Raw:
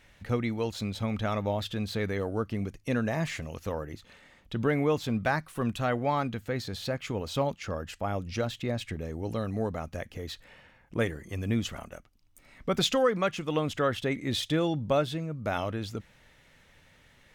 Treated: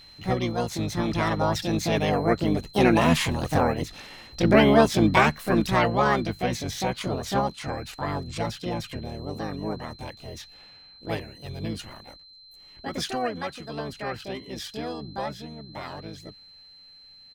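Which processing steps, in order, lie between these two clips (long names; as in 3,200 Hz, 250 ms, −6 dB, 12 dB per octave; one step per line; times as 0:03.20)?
source passing by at 0:03.87, 14 m/s, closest 21 metres
pitch-shifted copies added −12 semitones −9 dB, +5 semitones −10 dB, +7 semitones 0 dB
steady tone 4,100 Hz −56 dBFS
level +8 dB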